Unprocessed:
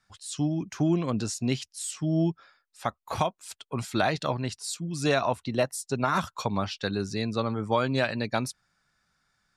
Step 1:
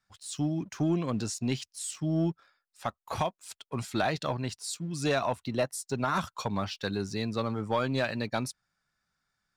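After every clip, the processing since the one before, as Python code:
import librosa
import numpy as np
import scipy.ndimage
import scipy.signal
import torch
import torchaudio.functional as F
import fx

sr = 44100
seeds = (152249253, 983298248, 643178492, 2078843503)

y = fx.leveller(x, sr, passes=1)
y = y * librosa.db_to_amplitude(-6.0)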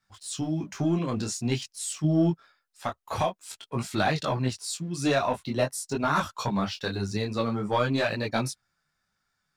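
y = fx.detune_double(x, sr, cents=17)
y = y * librosa.db_to_amplitude(7.0)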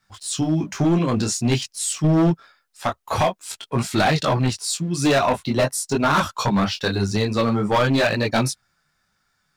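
y = np.clip(x, -10.0 ** (-22.0 / 20.0), 10.0 ** (-22.0 / 20.0))
y = y * librosa.db_to_amplitude(8.5)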